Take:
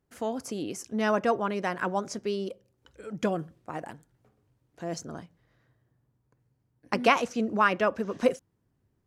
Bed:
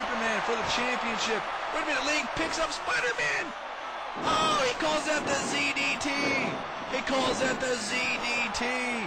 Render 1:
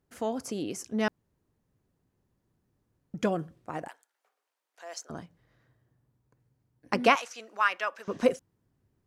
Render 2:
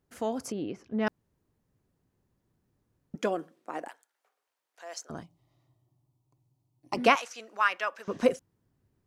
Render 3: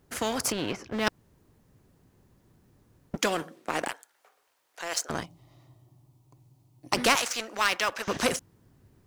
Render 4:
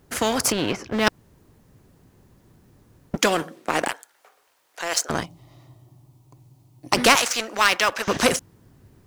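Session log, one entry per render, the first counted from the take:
1.08–3.14 s: room tone; 3.88–5.10 s: Bessel high-pass 920 Hz, order 4; 7.15–8.08 s: high-pass 1.1 kHz
0.52–1.07 s: distance through air 330 m; 3.15–3.89 s: high-pass 250 Hz 24 dB/octave; 5.23–6.97 s: static phaser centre 320 Hz, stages 8
waveshaping leveller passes 1; spectrum-flattening compressor 2:1
trim +7 dB; peak limiter -2 dBFS, peak gain reduction 1 dB

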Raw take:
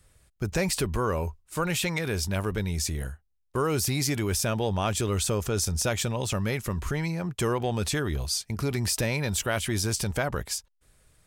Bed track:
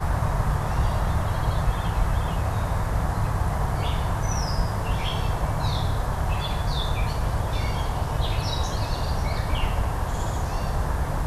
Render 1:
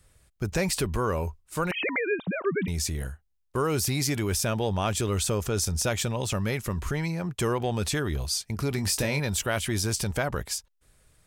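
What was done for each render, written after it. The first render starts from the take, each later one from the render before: 1.71–2.68 s: formants replaced by sine waves; 8.76–9.20 s: doubling 21 ms -7.5 dB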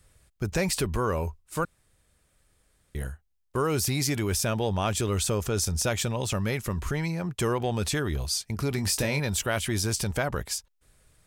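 1.65–2.95 s: room tone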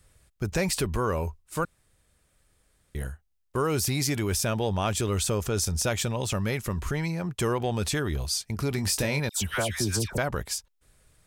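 9.29–10.18 s: phase dispersion lows, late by 125 ms, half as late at 1.4 kHz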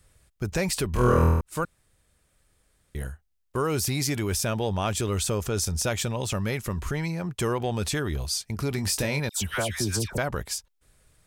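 0.91–1.41 s: flutter echo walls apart 4.2 m, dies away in 1.1 s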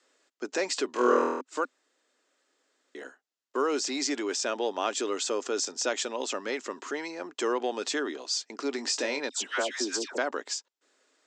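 Chebyshev band-pass 260–7500 Hz, order 5; band-stop 2.3 kHz, Q 17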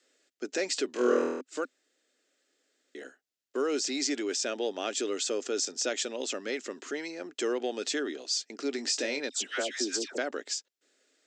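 peaking EQ 1 kHz -13.5 dB 0.69 oct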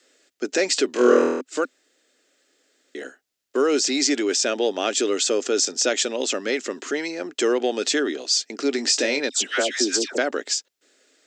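trim +9.5 dB

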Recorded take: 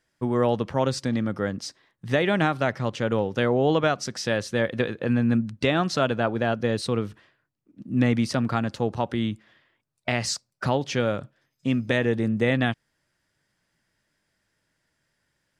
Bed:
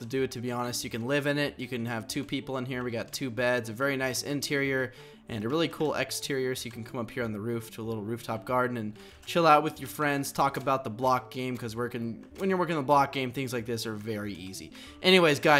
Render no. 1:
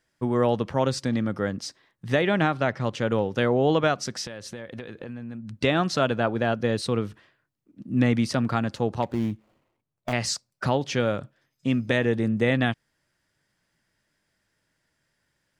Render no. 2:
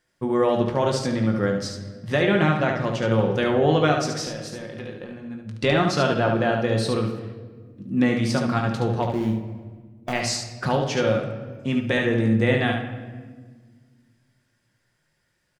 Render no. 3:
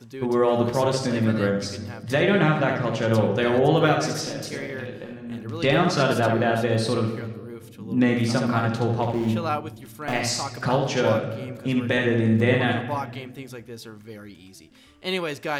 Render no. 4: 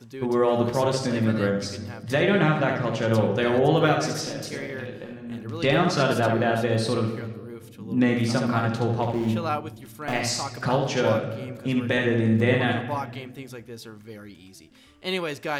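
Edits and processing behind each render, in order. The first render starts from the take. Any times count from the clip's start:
2.21–2.81 s: distance through air 54 m; 4.26–5.50 s: compression 10:1, threshold -33 dBFS; 9.02–10.13 s: median filter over 25 samples
on a send: early reflections 20 ms -8.5 dB, 72 ms -5.5 dB; on the sum: simulated room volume 1600 m³, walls mixed, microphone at 0.92 m
add bed -6.5 dB
trim -1 dB

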